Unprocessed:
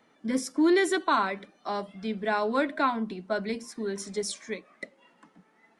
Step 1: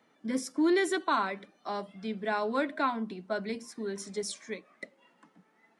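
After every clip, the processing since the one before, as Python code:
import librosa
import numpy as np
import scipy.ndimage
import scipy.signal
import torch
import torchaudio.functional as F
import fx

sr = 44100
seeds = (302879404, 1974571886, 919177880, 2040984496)

y = scipy.signal.sosfilt(scipy.signal.butter(2, 73.0, 'highpass', fs=sr, output='sos'), x)
y = y * librosa.db_to_amplitude(-3.5)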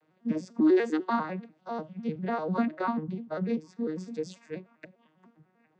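y = fx.vocoder_arp(x, sr, chord='minor triad', root=51, every_ms=99)
y = y * librosa.db_to_amplitude(3.0)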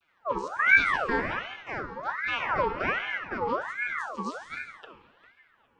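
y = fx.rev_gated(x, sr, seeds[0], gate_ms=490, shape='falling', drr_db=2.5)
y = fx.ring_lfo(y, sr, carrier_hz=1300.0, swing_pct=50, hz=1.3)
y = y * librosa.db_to_amplitude(1.5)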